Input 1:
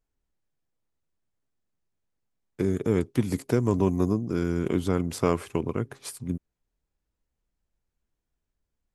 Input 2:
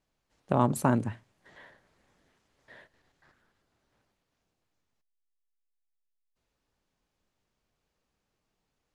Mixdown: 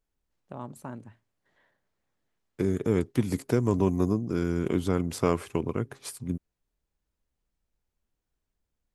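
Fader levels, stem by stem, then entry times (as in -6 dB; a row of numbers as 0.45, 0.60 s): -1.0, -15.0 dB; 0.00, 0.00 s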